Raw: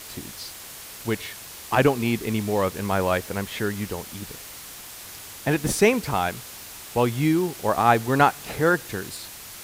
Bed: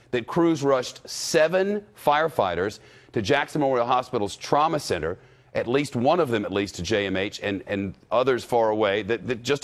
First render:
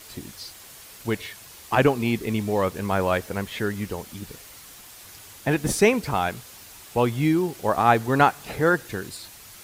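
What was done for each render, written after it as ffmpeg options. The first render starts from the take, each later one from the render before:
ffmpeg -i in.wav -af "afftdn=noise_reduction=6:noise_floor=-41" out.wav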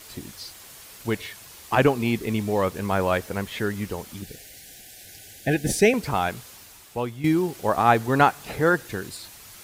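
ffmpeg -i in.wav -filter_complex "[0:a]asettb=1/sr,asplit=3[link_01][link_02][link_03];[link_01]atrim=end=4.224[link_04];[link_02]atrim=start=4.22:end=5.94,asetpts=PTS-STARTPTS,afade=type=in:duration=0.004:curve=qsin,afade=type=out:start_time=1.716:duration=0.004:curve=qsin,asuperstop=centerf=1100:order=20:qfactor=1.7[link_05];[link_03]atrim=start=5.936[link_06];[link_04][link_05]acrossfade=duration=0.004:curve1=hsin:curve2=qsin[link_07];[link_07][link_06]acrossfade=duration=0.004:curve1=qsin:curve2=hsin,asplit=2[link_08][link_09];[link_08]atrim=end=7.24,asetpts=PTS-STARTPTS,afade=type=out:start_time=6.45:duration=0.79:silence=0.251189[link_10];[link_09]atrim=start=7.24,asetpts=PTS-STARTPTS,afade=type=in:duration=0.004:curve=hsin:silence=0.251189[link_11];[link_10][link_11]concat=n=2:v=0:a=1" out.wav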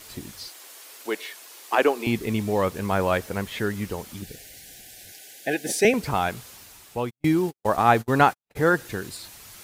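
ffmpeg -i in.wav -filter_complex "[0:a]asettb=1/sr,asplit=3[link_01][link_02][link_03];[link_01]atrim=end=0.484[link_04];[link_02]atrim=start=0.48:end=2.07,asetpts=PTS-STARTPTS,afade=type=in:duration=0.004:curve=qsin,afade=type=out:start_time=1.586:duration=0.004:curve=qsin,highpass=frequency=310:width=0.5412,highpass=frequency=310:width=1.3066[link_05];[link_03]atrim=start=2.066[link_06];[link_04][link_05]acrossfade=duration=0.004:curve1=hsin:curve2=qsin[link_07];[link_07][link_06]acrossfade=duration=0.004:curve1=qsin:curve2=hsin,asettb=1/sr,asplit=3[link_08][link_09][link_10];[link_08]atrim=end=5.124[link_11];[link_09]atrim=start=5.12:end=5.85,asetpts=PTS-STARTPTS,afade=type=in:duration=0.004:curve=qsin,afade=type=out:start_time=0.726:duration=0.004:curve=qsin,highpass=350[link_12];[link_10]atrim=start=5.846[link_13];[link_11][link_12]acrossfade=duration=0.004:curve1=hsin:curve2=qsin[link_14];[link_14][link_13]acrossfade=duration=0.004:curve1=qsin:curve2=hsin,asplit=3[link_15][link_16][link_17];[link_15]afade=type=out:start_time=7.09:duration=0.02[link_18];[link_16]agate=range=-57dB:threshold=-30dB:ratio=16:release=100:detection=peak,afade=type=in:start_time=7.09:duration=0.02,afade=type=out:start_time=8.55:duration=0.02[link_19];[link_17]afade=type=in:start_time=8.55:duration=0.02[link_20];[link_18][link_19][link_20]amix=inputs=3:normalize=0" out.wav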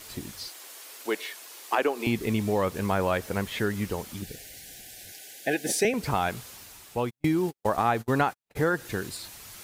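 ffmpeg -i in.wav -af "acompressor=threshold=-21dB:ratio=4" out.wav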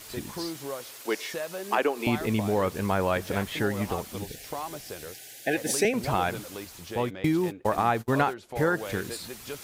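ffmpeg -i in.wav -i bed.wav -filter_complex "[1:a]volume=-15dB[link_01];[0:a][link_01]amix=inputs=2:normalize=0" out.wav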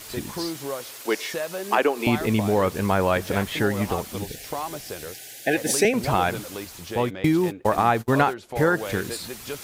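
ffmpeg -i in.wav -af "volume=4.5dB" out.wav

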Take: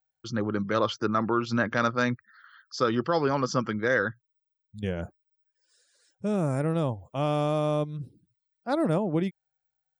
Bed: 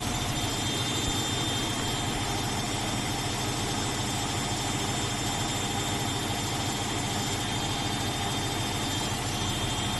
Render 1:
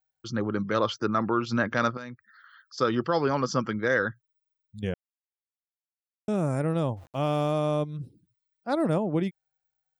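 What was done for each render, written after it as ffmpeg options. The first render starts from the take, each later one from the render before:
ffmpeg -i in.wav -filter_complex "[0:a]asettb=1/sr,asplit=3[link_01][link_02][link_03];[link_01]atrim=end=1.974[link_04];[link_02]atrim=start=1.97:end=2.78,asetpts=PTS-STARTPTS,afade=type=in:duration=0.004:curve=qsin,afade=type=out:start_time=0.806:duration=0.004:curve=qsin,acompressor=threshold=-47dB:ratio=2:attack=3.2:release=140:knee=1:detection=peak[link_05];[link_03]atrim=start=2.776[link_06];[link_04][link_05]acrossfade=duration=0.004:curve1=hsin:curve2=qsin[link_07];[link_07][link_06]acrossfade=duration=0.004:curve1=qsin:curve2=hsin,asplit=3[link_08][link_09][link_10];[link_08]afade=type=out:start_time=6.96:duration=0.02[link_11];[link_09]aeval=exprs='val(0)*gte(abs(val(0)),0.00316)':channel_layout=same,afade=type=in:start_time=6.96:duration=0.02,afade=type=out:start_time=7.5:duration=0.02[link_12];[link_10]afade=type=in:start_time=7.5:duration=0.02[link_13];[link_11][link_12][link_13]amix=inputs=3:normalize=0,asplit=3[link_14][link_15][link_16];[link_14]atrim=end=4.94,asetpts=PTS-STARTPTS,afade=type=out:start_time=4.936:duration=0.004:curve=hsin[link_17];[link_15]atrim=start=4.94:end=6.28,asetpts=PTS-STARTPTS,volume=0[link_18];[link_16]atrim=start=6.28,asetpts=PTS-STARTPTS,afade=type=in:duration=0.004:curve=hsin[link_19];[link_17][link_18][link_19]concat=n=3:v=0:a=1" out.wav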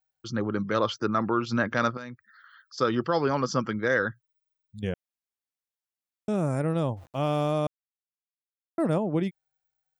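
ffmpeg -i in.wav -filter_complex "[0:a]asplit=3[link_01][link_02][link_03];[link_01]atrim=end=7.67,asetpts=PTS-STARTPTS,afade=type=out:start_time=7.666:duration=0.004:curve=hsin[link_04];[link_02]atrim=start=7.67:end=8.78,asetpts=PTS-STARTPTS,volume=0[link_05];[link_03]atrim=start=8.78,asetpts=PTS-STARTPTS,afade=type=in:duration=0.004:curve=hsin[link_06];[link_04][link_05][link_06]concat=n=3:v=0:a=1" out.wav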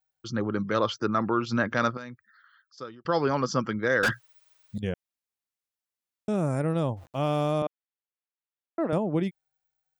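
ffmpeg -i in.wav -filter_complex "[0:a]asettb=1/sr,asplit=3[link_01][link_02][link_03];[link_01]atrim=end=4.034[link_04];[link_02]atrim=start=4.03:end=4.78,asetpts=PTS-STARTPTS,afade=type=in:duration=0.004:curve=qsin,afade=type=out:start_time=0.746:duration=0.004:curve=qsin,asplit=2[link_05][link_06];[link_06]highpass=frequency=720:poles=1,volume=32dB,asoftclip=type=tanh:threshold=-16.5dB[link_07];[link_05][link_07]amix=inputs=2:normalize=0,lowpass=frequency=5900:poles=1,volume=-6dB[link_08];[link_03]atrim=start=4.776[link_09];[link_04][link_08]acrossfade=duration=0.004:curve1=hsin:curve2=qsin[link_10];[link_10][link_09]acrossfade=duration=0.004:curve1=qsin:curve2=hsin,asettb=1/sr,asplit=3[link_11][link_12][link_13];[link_11]atrim=end=7.624[link_14];[link_12]atrim=start=7.62:end=8.93,asetpts=PTS-STARTPTS,afade=type=in:duration=0.004:curve=qsin,afade=type=out:start_time=1.306:duration=0.004:curve=qsin,highpass=290,lowpass=2900[link_15];[link_13]atrim=start=8.926[link_16];[link_14][link_15]acrossfade=duration=0.004:curve1=hsin:curve2=qsin[link_17];[link_17][link_16]acrossfade=duration=0.004:curve1=qsin:curve2=hsin,asplit=2[link_18][link_19];[link_18]atrim=end=3.05,asetpts=PTS-STARTPTS,afade=type=out:start_time=1.96:duration=1.09[link_20];[link_19]atrim=start=3.05,asetpts=PTS-STARTPTS,afade=type=in:duration=0.004:curve=hsin[link_21];[link_20][link_21]concat=n=2:v=0:a=1" out.wav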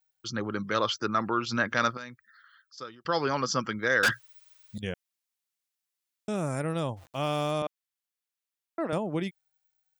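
ffmpeg -i in.wav -af "tiltshelf=frequency=1200:gain=-5" out.wav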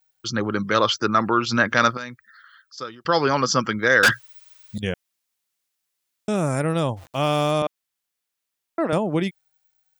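ffmpeg -i in.wav -af "volume=8dB" out.wav

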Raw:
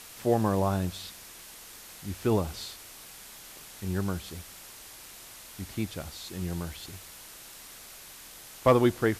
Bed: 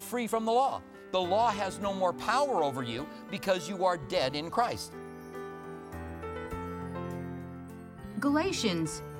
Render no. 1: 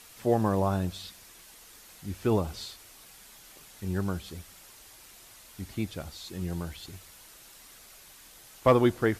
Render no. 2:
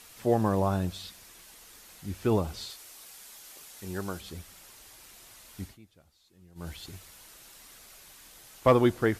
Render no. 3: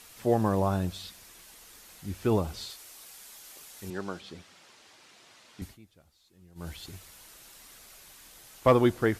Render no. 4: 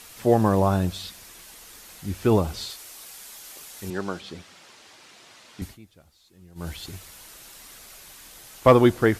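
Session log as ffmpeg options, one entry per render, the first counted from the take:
ffmpeg -i in.wav -af "afftdn=noise_reduction=6:noise_floor=-48" out.wav
ffmpeg -i in.wav -filter_complex "[0:a]asettb=1/sr,asplit=3[link_01][link_02][link_03];[link_01]atrim=end=2.704[link_04];[link_02]atrim=start=2.7:end=4.21,asetpts=PTS-STARTPTS,afade=type=in:duration=0.004:curve=qsin,afade=type=out:start_time=1.506:duration=0.004:curve=qsin,bass=frequency=250:gain=-9,treble=frequency=4000:gain=4[link_05];[link_03]atrim=start=4.206[link_06];[link_04][link_05]acrossfade=duration=0.004:curve1=hsin:curve2=qsin[link_07];[link_07][link_06]acrossfade=duration=0.004:curve1=qsin:curve2=hsin,asplit=3[link_08][link_09][link_10];[link_08]atrim=end=5.78,asetpts=PTS-STARTPTS,afade=type=out:start_time=5.64:duration=0.14:silence=0.0749894[link_11];[link_09]atrim=start=5.78:end=6.55,asetpts=PTS-STARTPTS,volume=-22.5dB[link_12];[link_10]atrim=start=6.55,asetpts=PTS-STARTPTS,afade=type=in:duration=0.14:silence=0.0749894[link_13];[link_11][link_12][link_13]concat=n=3:v=0:a=1" out.wav
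ffmpeg -i in.wav -filter_complex "[0:a]asettb=1/sr,asplit=3[link_01][link_02][link_03];[link_01]atrim=end=3.904[link_04];[link_02]atrim=start=3.9:end=5.62,asetpts=PTS-STARTPTS,afade=type=in:duration=0.004:curve=qsin,afade=type=out:start_time=1.716:duration=0.004:curve=qsin,highpass=160,lowpass=5100[link_05];[link_03]atrim=start=5.616[link_06];[link_04][link_05]acrossfade=duration=0.004:curve1=hsin:curve2=qsin[link_07];[link_07][link_06]acrossfade=duration=0.004:curve1=qsin:curve2=hsin" out.wav
ffmpeg -i in.wav -af "volume=6dB" out.wav

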